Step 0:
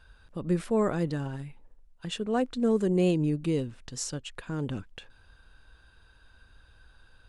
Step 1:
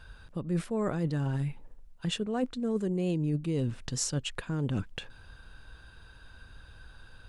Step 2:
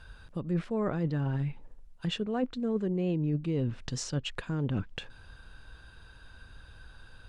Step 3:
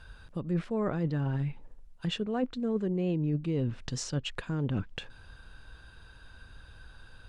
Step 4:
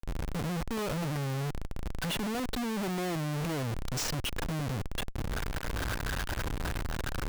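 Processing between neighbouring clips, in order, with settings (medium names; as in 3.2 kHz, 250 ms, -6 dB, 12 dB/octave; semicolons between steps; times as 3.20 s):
peaking EQ 140 Hz +4.5 dB 1.2 oct; reverse; compression 10:1, threshold -32 dBFS, peak gain reduction 14 dB; reverse; trim +5.5 dB
low-pass that closes with the level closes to 2.8 kHz, closed at -25 dBFS
no audible change
recorder AGC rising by 39 dB/s; Schmitt trigger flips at -41 dBFS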